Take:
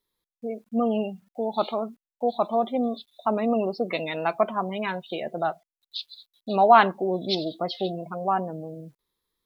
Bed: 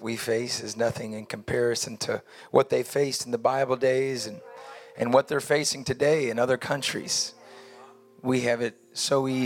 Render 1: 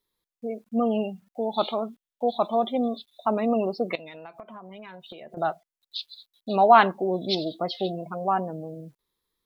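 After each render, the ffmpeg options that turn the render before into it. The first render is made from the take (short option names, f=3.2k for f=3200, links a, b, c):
-filter_complex "[0:a]asettb=1/sr,asplit=3[a][b][c];[a]atrim=end=1.494[d];[b]atrim=start=1.49:end=2.88,asetpts=PTS-STARTPTS,afade=t=in:d=0.004:c=qsin,afade=t=out:st=1.386:d=0.004:c=qsin,equalizer=f=3.4k:w=3.8:g=7.5[e];[c]atrim=start=2.876[f];[d][e]acrossfade=d=0.004:c1=hsin:c2=qsin[g];[g][f]acrossfade=d=0.004:c1=qsin:c2=hsin,asettb=1/sr,asplit=3[h][i][j];[h]atrim=end=3.954[k];[i]atrim=start=3.95:end=5.37,asetpts=PTS-STARTPTS,afade=t=in:d=0.004:c=qsin,afade=t=out:st=1.416:d=0.004:c=qsin,acompressor=threshold=-38dB:ratio=16:attack=3.2:release=140:knee=1:detection=peak[l];[j]atrim=start=5.366[m];[k][l]acrossfade=d=0.004:c1=hsin:c2=qsin[n];[n][m]acrossfade=d=0.004:c1=qsin:c2=hsin"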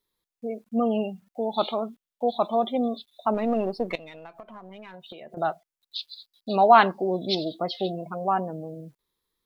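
-filter_complex "[0:a]asettb=1/sr,asplit=3[a][b][c];[a]atrim=end=3.344[d];[b]atrim=start=3.34:end=4.94,asetpts=PTS-STARTPTS,afade=t=in:d=0.004:c=qsin,afade=t=out:st=1.596:d=0.004:c=qsin,aeval=exprs='if(lt(val(0),0),0.708*val(0),val(0))':c=same[e];[c]atrim=start=4.936[f];[d][e]acrossfade=d=0.004:c1=hsin:c2=qsin[g];[g][f]acrossfade=d=0.004:c1=qsin:c2=hsin,asettb=1/sr,asplit=3[h][i][j];[h]atrim=end=6.074[k];[i]atrim=start=6.07:end=7.17,asetpts=PTS-STARTPTS,afade=t=in:d=0.004:c=qsin,afade=t=out:st=1.096:d=0.004:c=qsin,equalizer=f=4.8k:w=4.6:g=9[l];[j]atrim=start=7.166[m];[k][l]acrossfade=d=0.004:c1=hsin:c2=qsin[n];[n][m]acrossfade=d=0.004:c1=qsin:c2=hsin"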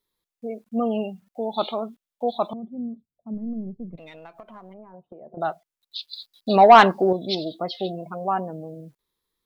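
-filter_complex "[0:a]asettb=1/sr,asplit=3[a][b][c];[a]atrim=end=2.534[d];[b]atrim=start=2.53:end=3.98,asetpts=PTS-STARTPTS,afade=t=in:d=0.004:c=qsin,afade=t=out:st=1.446:d=0.004:c=qsin,lowpass=f=160:t=q:w=1.7[e];[c]atrim=start=3.976[f];[d][e]acrossfade=d=0.004:c1=hsin:c2=qsin[g];[g][f]acrossfade=d=0.004:c1=qsin:c2=hsin,asplit=3[h][i][j];[h]afade=t=out:st=4.72:d=0.02[k];[i]lowpass=f=1k:w=0.5412,lowpass=f=1k:w=1.3066,afade=t=in:st=4.72:d=0.02,afade=t=out:st=5.4:d=0.02[l];[j]afade=t=in:st=5.4:d=0.02[m];[k][l][m]amix=inputs=3:normalize=0,asettb=1/sr,asplit=3[n][o][p];[n]atrim=end=6.134[q];[o]atrim=start=6.13:end=7.13,asetpts=PTS-STARTPTS,afade=t=in:d=0.004:c=qsin,afade=t=out:st=0.996:d=0.004:c=qsin,acontrast=75[r];[p]atrim=start=7.126[s];[q][r]acrossfade=d=0.004:c1=hsin:c2=qsin[t];[t][s]acrossfade=d=0.004:c1=qsin:c2=hsin"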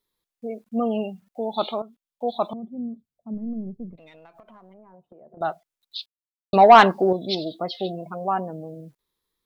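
-filter_complex "[0:a]asettb=1/sr,asplit=3[a][b][c];[a]atrim=end=3.934[d];[b]atrim=start=3.93:end=5.41,asetpts=PTS-STARTPTS,afade=t=in:d=0.004:c=qsin,afade=t=out:st=1.476:d=0.004:c=qsin,acompressor=threshold=-49dB:ratio=2:attack=3.2:release=140:knee=1:detection=peak[e];[c]atrim=start=5.406[f];[d][e]acrossfade=d=0.004:c1=hsin:c2=qsin[g];[g][f]acrossfade=d=0.004:c1=qsin:c2=hsin,asplit=4[h][i][j][k];[h]atrim=end=1.82,asetpts=PTS-STARTPTS,afade=t=out:st=1.816:d=0.004:c=hsin:silence=0.223872[l];[i]atrim=start=1.82:end=6.06,asetpts=PTS-STARTPTS,afade=t=in:d=0.56:silence=0.223872,afade=t=out:st=4.236:d=0.004:c=hsin[m];[j]atrim=start=6.06:end=6.53,asetpts=PTS-STARTPTS,volume=0[n];[k]atrim=start=6.53,asetpts=PTS-STARTPTS,afade=t=in:d=0.004:c=hsin[o];[l][m][n][o]concat=n=4:v=0:a=1"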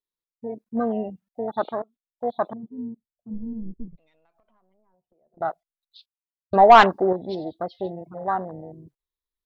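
-af "afwtdn=0.0447,asubboost=boost=5:cutoff=68"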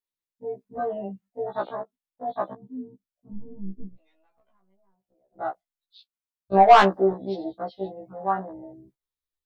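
-af "asoftclip=type=tanh:threshold=-4dB,afftfilt=real='re*1.73*eq(mod(b,3),0)':imag='im*1.73*eq(mod(b,3),0)':win_size=2048:overlap=0.75"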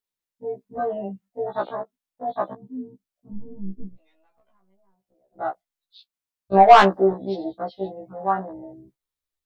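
-af "volume=2.5dB"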